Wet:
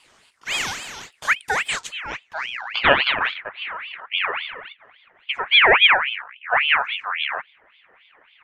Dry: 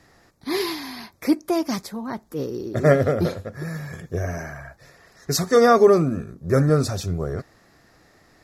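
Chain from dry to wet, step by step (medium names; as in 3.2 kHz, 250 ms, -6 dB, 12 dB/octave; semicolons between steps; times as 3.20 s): low-pass sweep 7.5 kHz -> 670 Hz, 1.64–3.78 s; gain riding within 4 dB 2 s; ring modulator with a swept carrier 2 kHz, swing 45%, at 3.6 Hz; trim -1.5 dB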